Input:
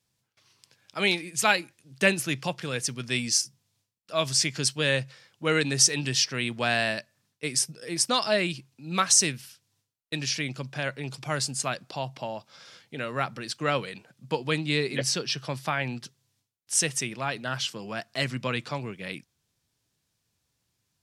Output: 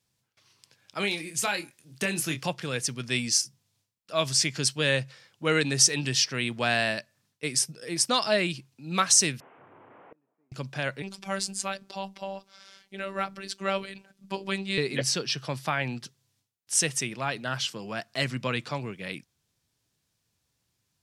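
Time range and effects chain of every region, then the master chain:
1–2.46 high shelf 7900 Hz +6.5 dB + compressor 4:1, threshold -24 dBFS + doubler 25 ms -7.5 dB
9.4–10.52 delta modulation 16 kbps, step -40 dBFS + Butterworth band-pass 520 Hz, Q 0.6 + flipped gate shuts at -40 dBFS, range -36 dB
11.02–14.78 notches 60/120/180/240/300/360/420/480 Hz + robotiser 194 Hz
whole clip: dry

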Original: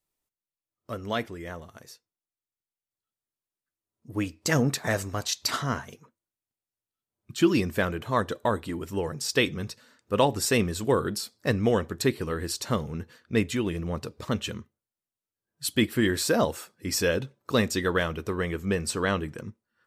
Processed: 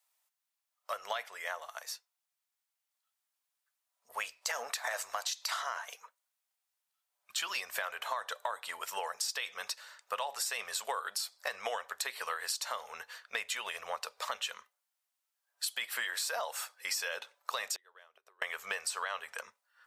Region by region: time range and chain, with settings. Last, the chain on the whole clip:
17.74–18.42 bell 370 Hz +14 dB 0.59 oct + flipped gate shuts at -18 dBFS, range -37 dB
whole clip: inverse Chebyshev high-pass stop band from 340 Hz, stop band 40 dB; limiter -21.5 dBFS; compressor, threshold -40 dBFS; gain +7 dB

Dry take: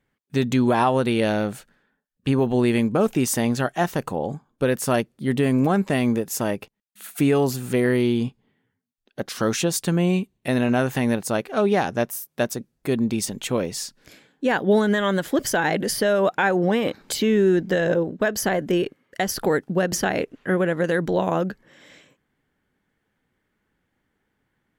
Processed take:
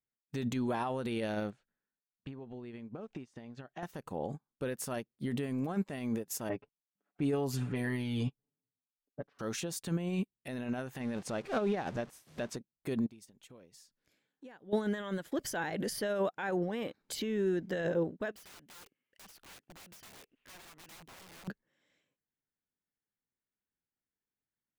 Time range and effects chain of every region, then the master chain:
1.5–3.83 compressor 10:1, threshold -29 dBFS + air absorption 120 m
6.49–9.39 low-pass opened by the level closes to 460 Hz, open at -16.5 dBFS + comb 7 ms, depth 88%
11–12.56 zero-crossing step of -30.5 dBFS + air absorption 61 m
13.06–14.73 compressor 4:1, threshold -36 dBFS + mismatched tape noise reduction encoder only
18.31–21.48 bell 2700 Hz +13.5 dB 0.82 oct + wrapped overs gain 21 dB + compressor 2.5:1, threshold -40 dBFS
whole clip: limiter -21 dBFS; upward expander 2.5:1, over -43 dBFS

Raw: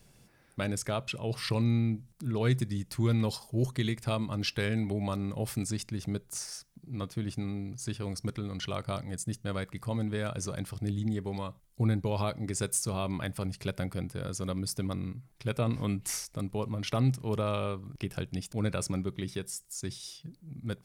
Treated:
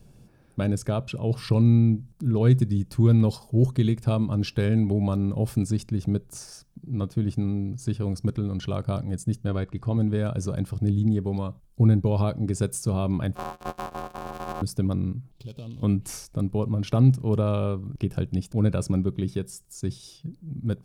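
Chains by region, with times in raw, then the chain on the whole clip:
9.48–9.97 LPF 5600 Hz + comb 2.8 ms, depth 31%
13.35–14.62 sample sorter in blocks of 256 samples + de-esser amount 35% + ring modulator 900 Hz
15.31–15.83 median filter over 15 samples + resonant high shelf 2300 Hz +12 dB, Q 3 + compressor 4:1, threshold -46 dBFS
whole clip: tilt shelf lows +6.5 dB, about 670 Hz; notch 2000 Hz, Q 6.7; gain +3.5 dB

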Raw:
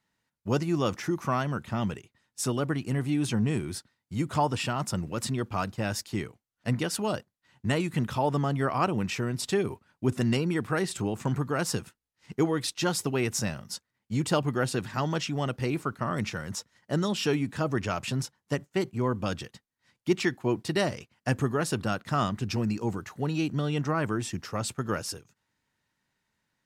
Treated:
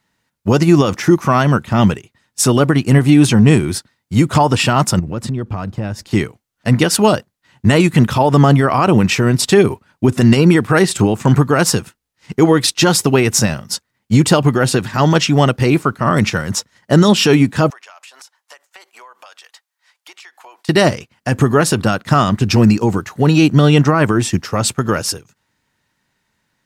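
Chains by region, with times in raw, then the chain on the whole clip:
4.99–6.11 tilt -2.5 dB/oct + compressor 4:1, threshold -35 dBFS
17.7–20.69 HPF 720 Hz 24 dB/oct + compressor 16:1, threshold -47 dBFS
whole clip: maximiser +20 dB; upward expander 1.5:1, over -24 dBFS

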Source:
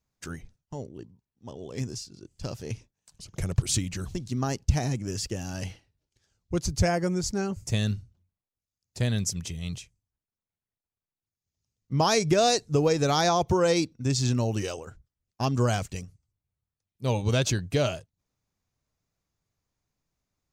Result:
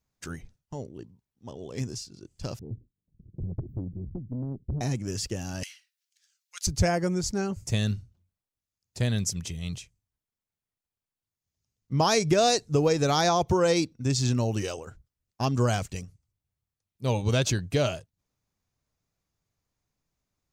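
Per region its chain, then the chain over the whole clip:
2.59–4.81 inverse Chebyshev band-stop 1800–9400 Hz, stop band 80 dB + tube stage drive 26 dB, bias 0.25
5.63–6.67 inverse Chebyshev high-pass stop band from 250 Hz, stop band 80 dB + tilt +2 dB/oct
whole clip: dry

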